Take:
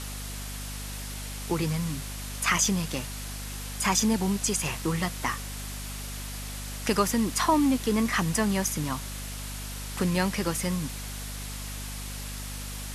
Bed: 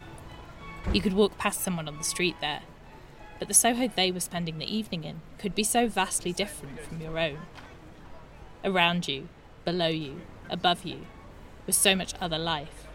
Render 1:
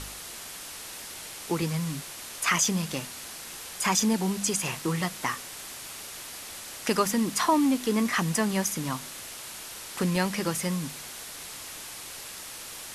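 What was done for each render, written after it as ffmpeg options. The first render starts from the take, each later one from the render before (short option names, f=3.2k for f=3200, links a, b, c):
-af "bandreject=f=50:t=h:w=4,bandreject=f=100:t=h:w=4,bandreject=f=150:t=h:w=4,bandreject=f=200:t=h:w=4,bandreject=f=250:t=h:w=4"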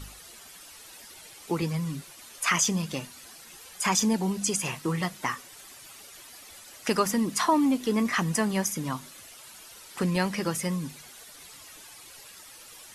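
-af "afftdn=nr=11:nf=-41"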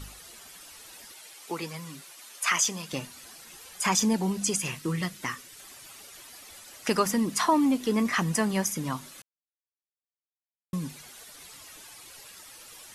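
-filter_complex "[0:a]asettb=1/sr,asplit=3[a][b][c];[a]atrim=end=1.124[d];[b]atrim=start=1.12:end=2.93,asetpts=PTS-STARTPTS,afade=t=in:d=0.004:c=qsin,afade=t=out:st=1.806:d=0.004:c=qsin,highpass=f=610:p=1[e];[c]atrim=start=2.926[f];[d][e]acrossfade=d=0.004:c1=hsin:c2=qsin[g];[g][f]acrossfade=d=0.004:c1=qsin:c2=hsin,asettb=1/sr,asplit=3[h][i][j];[h]atrim=end=4.584[k];[i]atrim=start=4.58:end=5.6,asetpts=PTS-STARTPTS,afade=t=in:d=0.004:c=qsin,afade=t=out:st=1.016:d=0.004:c=qsin,equalizer=f=800:w=1.2:g=-8.5[l];[j]atrim=start=5.596[m];[k][l]acrossfade=d=0.004:c1=hsin:c2=qsin[n];[n][m]acrossfade=d=0.004:c1=qsin:c2=hsin,asplit=3[o][p][q];[o]atrim=end=9.22,asetpts=PTS-STARTPTS,afade=t=out:st=9.216:d=0.004:c=hsin[r];[p]atrim=start=9.22:end=10.73,asetpts=PTS-STARTPTS,volume=0[s];[q]atrim=start=10.73,asetpts=PTS-STARTPTS,afade=t=in:d=0.004:c=hsin[t];[r][s][t]concat=n=3:v=0:a=1"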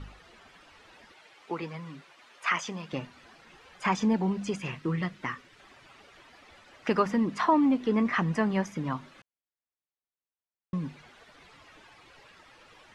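-af "lowpass=2.4k"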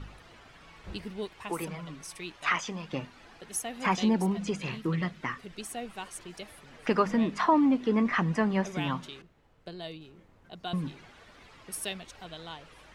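-filter_complex "[1:a]volume=-14dB[a];[0:a][a]amix=inputs=2:normalize=0"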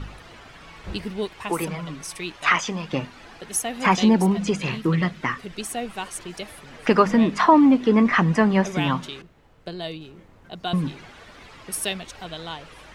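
-af "volume=8.5dB"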